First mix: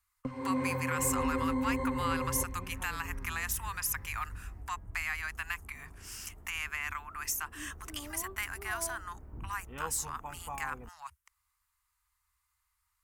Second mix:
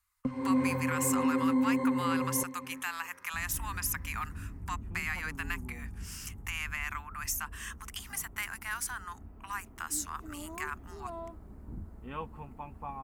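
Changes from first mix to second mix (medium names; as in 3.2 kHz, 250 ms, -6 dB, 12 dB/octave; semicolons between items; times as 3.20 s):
second sound: entry +2.35 s; master: add peaking EQ 220 Hz +8.5 dB 0.68 oct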